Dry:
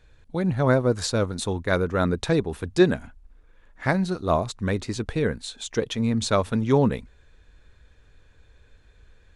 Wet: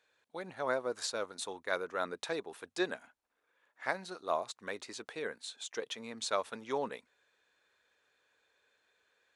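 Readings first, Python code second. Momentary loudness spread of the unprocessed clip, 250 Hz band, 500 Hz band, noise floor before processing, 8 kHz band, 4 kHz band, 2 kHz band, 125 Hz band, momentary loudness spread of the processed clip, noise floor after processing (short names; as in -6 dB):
8 LU, -21.5 dB, -13.0 dB, -56 dBFS, -8.5 dB, -8.5 dB, -8.5 dB, -32.0 dB, 9 LU, -82 dBFS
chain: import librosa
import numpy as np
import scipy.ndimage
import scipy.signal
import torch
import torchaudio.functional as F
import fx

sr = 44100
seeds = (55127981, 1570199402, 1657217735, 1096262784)

y = scipy.signal.sosfilt(scipy.signal.butter(2, 560.0, 'highpass', fs=sr, output='sos'), x)
y = y * 10.0 ** (-8.5 / 20.0)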